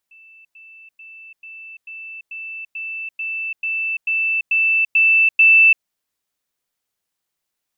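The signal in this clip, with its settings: level ladder 2650 Hz -43.5 dBFS, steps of 3 dB, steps 13, 0.34 s 0.10 s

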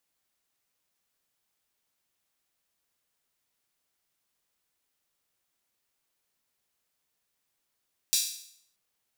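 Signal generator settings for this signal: open hi-hat length 0.63 s, high-pass 4400 Hz, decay 0.65 s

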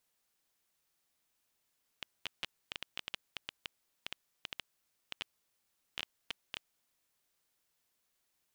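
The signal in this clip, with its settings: random clicks 7.2/s -20.5 dBFS 4.57 s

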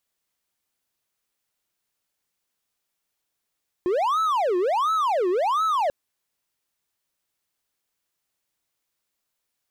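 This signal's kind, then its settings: siren wail 353–1310 Hz 1.4/s triangle -17.5 dBFS 2.04 s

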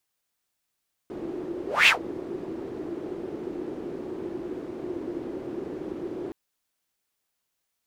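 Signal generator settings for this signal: whoosh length 5.22 s, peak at 0.78, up 0.22 s, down 0.12 s, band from 350 Hz, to 2700 Hz, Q 5.6, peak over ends 18.5 dB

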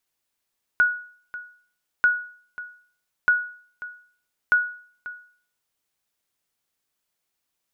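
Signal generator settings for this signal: sonar ping 1460 Hz, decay 0.49 s, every 1.24 s, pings 4, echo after 0.54 s, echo -17 dB -11 dBFS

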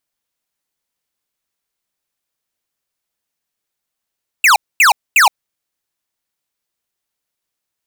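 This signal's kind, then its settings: burst of laser zaps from 2800 Hz, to 750 Hz, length 0.12 s square, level -8.5 dB, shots 3, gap 0.24 s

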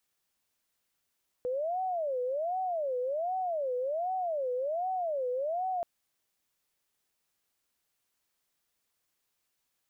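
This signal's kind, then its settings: siren wail 495–753 Hz 1.3/s sine -29 dBFS 4.38 s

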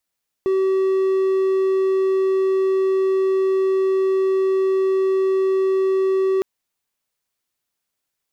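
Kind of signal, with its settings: tone triangle 382 Hz -13.5 dBFS 5.96 s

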